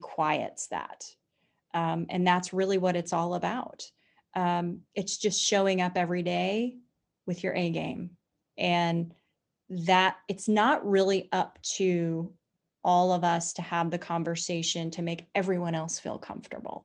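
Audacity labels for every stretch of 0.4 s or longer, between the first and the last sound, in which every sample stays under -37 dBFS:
1.080000	1.740000	silence
3.850000	4.360000	silence
6.700000	7.280000	silence
8.070000	8.580000	silence
9.050000	9.710000	silence
12.270000	12.850000	silence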